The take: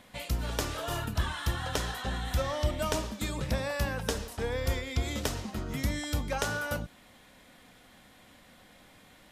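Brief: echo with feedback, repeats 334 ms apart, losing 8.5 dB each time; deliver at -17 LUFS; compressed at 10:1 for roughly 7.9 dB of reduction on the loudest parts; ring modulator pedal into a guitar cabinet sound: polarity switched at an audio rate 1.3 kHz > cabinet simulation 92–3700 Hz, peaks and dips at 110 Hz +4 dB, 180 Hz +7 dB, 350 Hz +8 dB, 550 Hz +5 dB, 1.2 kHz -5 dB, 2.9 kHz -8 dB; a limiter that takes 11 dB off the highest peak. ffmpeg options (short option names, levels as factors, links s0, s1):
-af "acompressor=threshold=0.0251:ratio=10,alimiter=level_in=2:limit=0.0631:level=0:latency=1,volume=0.501,aecho=1:1:334|668|1002|1336:0.376|0.143|0.0543|0.0206,aeval=exprs='val(0)*sgn(sin(2*PI*1300*n/s))':c=same,highpass=92,equalizer=f=110:t=q:w=4:g=4,equalizer=f=180:t=q:w=4:g=7,equalizer=f=350:t=q:w=4:g=8,equalizer=f=550:t=q:w=4:g=5,equalizer=f=1200:t=q:w=4:g=-5,equalizer=f=2900:t=q:w=4:g=-8,lowpass=f=3700:w=0.5412,lowpass=f=3700:w=1.3066,volume=14.1"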